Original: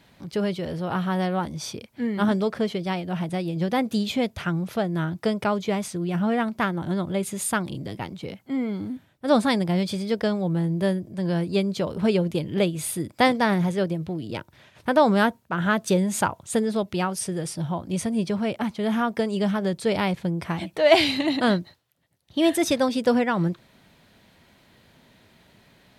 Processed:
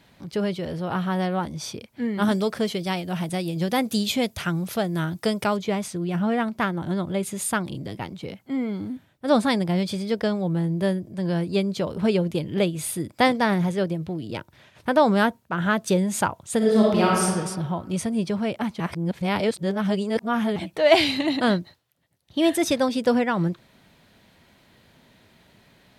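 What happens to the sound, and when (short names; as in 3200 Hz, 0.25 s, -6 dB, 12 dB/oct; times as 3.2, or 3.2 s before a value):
2.22–5.57 high shelf 4500 Hz +12 dB
16.57–17.23 reverb throw, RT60 1.5 s, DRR -5 dB
18.8–20.56 reverse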